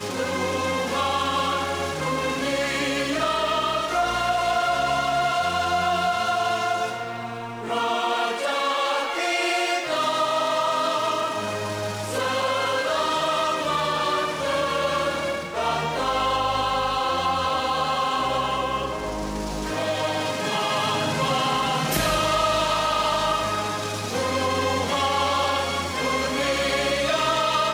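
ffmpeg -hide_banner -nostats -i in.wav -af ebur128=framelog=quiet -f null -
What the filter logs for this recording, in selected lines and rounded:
Integrated loudness:
  I:         -23.5 LUFS
  Threshold: -33.5 LUFS
Loudness range:
  LRA:         2.1 LU
  Threshold: -43.5 LUFS
  LRA low:   -24.6 LUFS
  LRA high:  -22.5 LUFS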